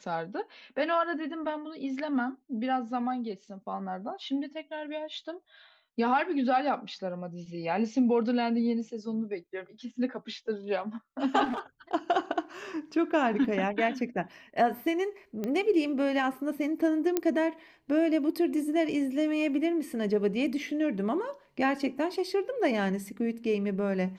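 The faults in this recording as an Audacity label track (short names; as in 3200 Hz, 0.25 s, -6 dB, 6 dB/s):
11.440000	11.590000	clipped -28.5 dBFS
15.440000	15.440000	pop -20 dBFS
17.170000	17.170000	pop -12 dBFS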